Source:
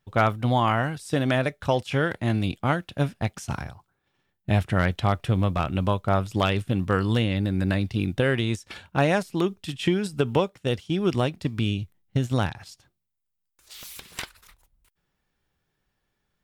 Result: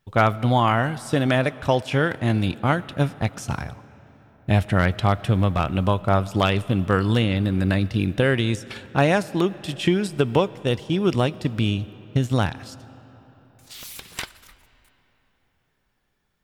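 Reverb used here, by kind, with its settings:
comb and all-pass reverb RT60 4.3 s, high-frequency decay 0.65×, pre-delay 45 ms, DRR 18.5 dB
level +3 dB

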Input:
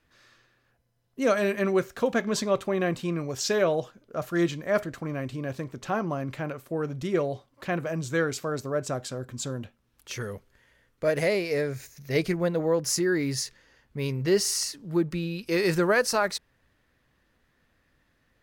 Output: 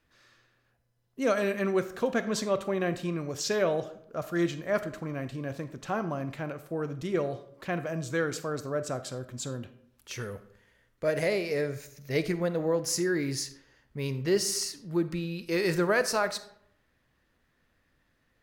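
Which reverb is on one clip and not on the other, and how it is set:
comb and all-pass reverb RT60 0.72 s, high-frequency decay 0.6×, pre-delay 5 ms, DRR 12 dB
level −3 dB

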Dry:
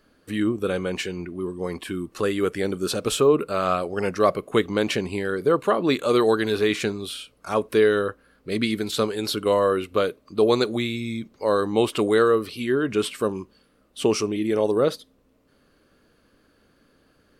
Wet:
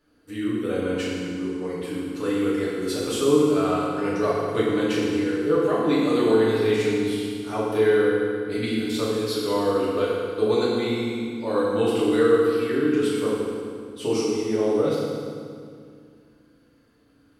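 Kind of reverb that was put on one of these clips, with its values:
feedback delay network reverb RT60 2.2 s, low-frequency decay 1.4×, high-frequency decay 0.8×, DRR −8 dB
level −10.5 dB

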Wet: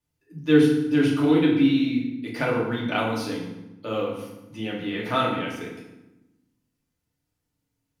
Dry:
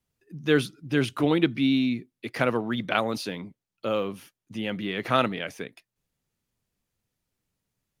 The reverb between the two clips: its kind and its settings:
feedback delay network reverb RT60 0.96 s, low-frequency decay 1.55×, high-frequency decay 0.75×, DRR −4.5 dB
level −5.5 dB

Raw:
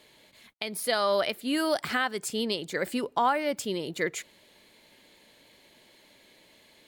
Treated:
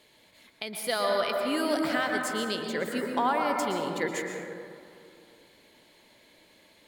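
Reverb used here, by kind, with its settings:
dense smooth reverb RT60 2.5 s, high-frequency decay 0.25×, pre-delay 105 ms, DRR 1 dB
level −2.5 dB

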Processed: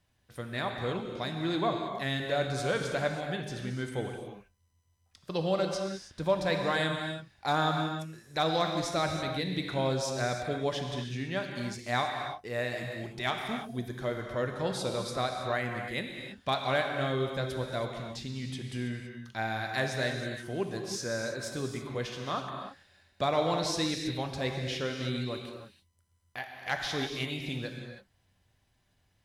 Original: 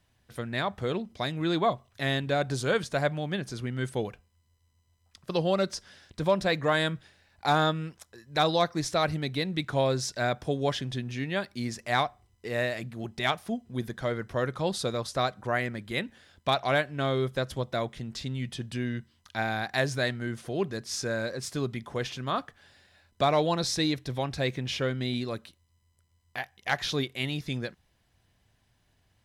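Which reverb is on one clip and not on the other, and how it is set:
reverb whose tail is shaped and stops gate 350 ms flat, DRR 2.5 dB
level −4.5 dB

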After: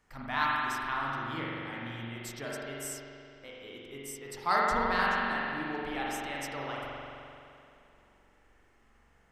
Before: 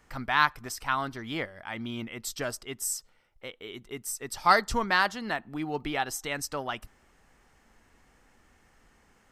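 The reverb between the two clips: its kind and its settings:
spring reverb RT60 2.7 s, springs 43 ms, chirp 60 ms, DRR −5 dB
level −9 dB

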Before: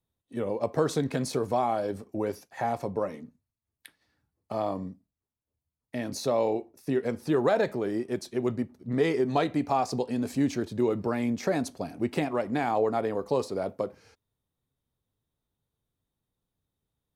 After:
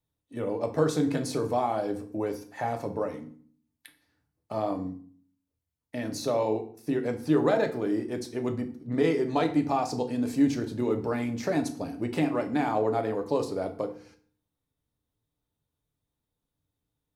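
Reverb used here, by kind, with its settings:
feedback delay network reverb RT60 0.49 s, low-frequency decay 1.45×, high-frequency decay 0.8×, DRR 5 dB
level −1.5 dB

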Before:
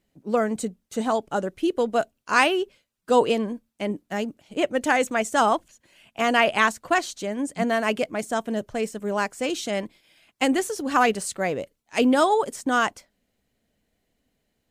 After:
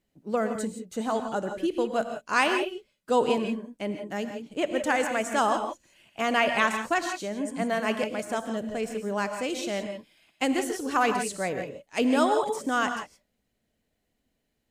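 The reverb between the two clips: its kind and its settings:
reverb whose tail is shaped and stops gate 190 ms rising, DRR 6 dB
level −4.5 dB

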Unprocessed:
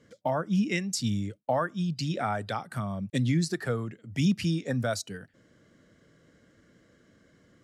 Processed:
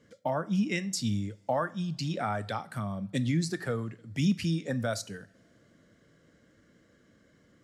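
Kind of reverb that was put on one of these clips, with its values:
coupled-rooms reverb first 0.45 s, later 3.9 s, from −28 dB, DRR 14 dB
level −2 dB

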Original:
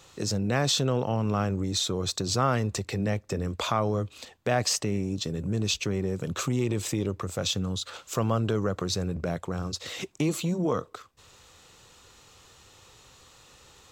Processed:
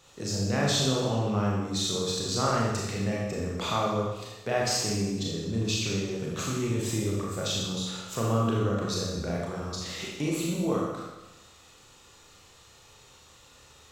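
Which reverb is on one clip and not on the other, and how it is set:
four-comb reverb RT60 1.1 s, combs from 27 ms, DRR −4 dB
level −5.5 dB

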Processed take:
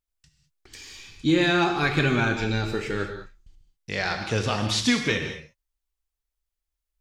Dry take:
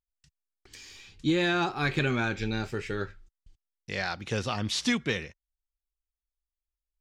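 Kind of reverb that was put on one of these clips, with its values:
reverb whose tail is shaped and stops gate 230 ms flat, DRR 4.5 dB
level +4 dB

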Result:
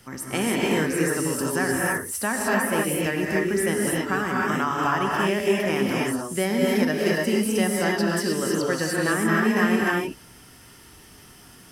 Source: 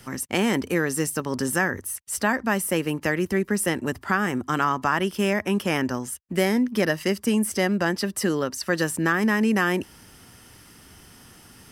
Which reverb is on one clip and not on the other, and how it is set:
reverb whose tail is shaped and stops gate 330 ms rising, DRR −3.5 dB
level −4 dB

